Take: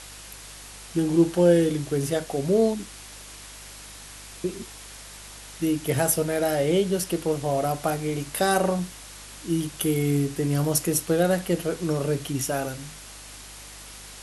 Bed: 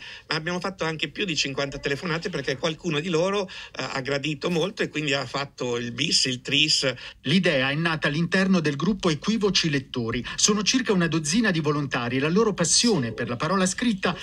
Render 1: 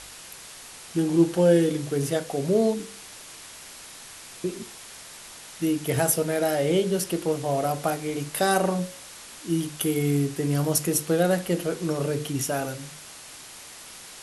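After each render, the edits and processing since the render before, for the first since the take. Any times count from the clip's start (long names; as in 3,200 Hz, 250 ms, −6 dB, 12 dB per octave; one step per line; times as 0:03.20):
hum removal 50 Hz, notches 11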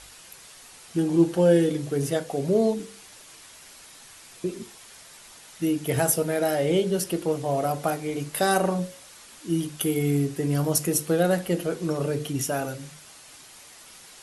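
broadband denoise 6 dB, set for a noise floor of −44 dBFS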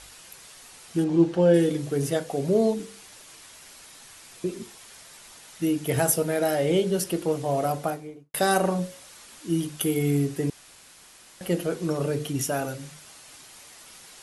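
0:01.04–0:01.54: high-frequency loss of the air 89 metres
0:07.69–0:08.34: fade out and dull
0:10.50–0:11.41: fill with room tone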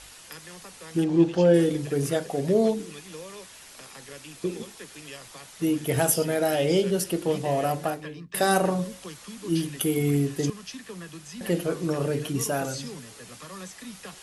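mix in bed −18.5 dB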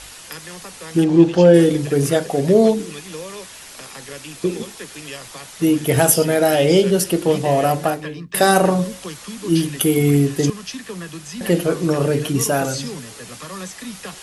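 level +8.5 dB
brickwall limiter −1 dBFS, peak gain reduction 2 dB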